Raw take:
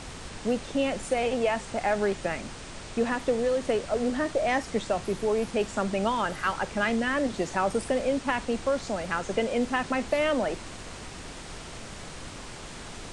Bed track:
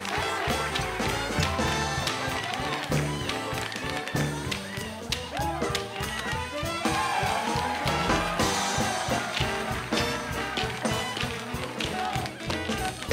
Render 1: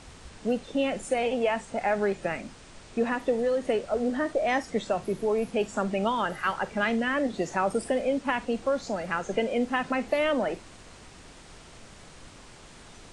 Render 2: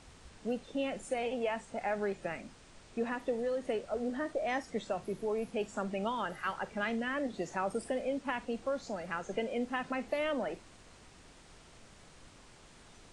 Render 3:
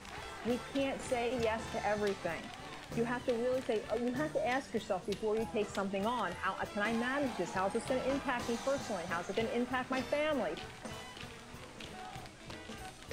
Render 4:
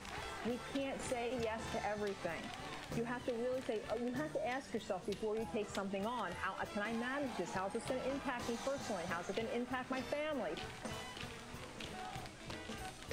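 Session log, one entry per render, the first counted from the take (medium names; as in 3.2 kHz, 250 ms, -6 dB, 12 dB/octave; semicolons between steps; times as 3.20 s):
noise print and reduce 8 dB
trim -8 dB
add bed track -17.5 dB
compression, threshold -36 dBFS, peak gain reduction 8 dB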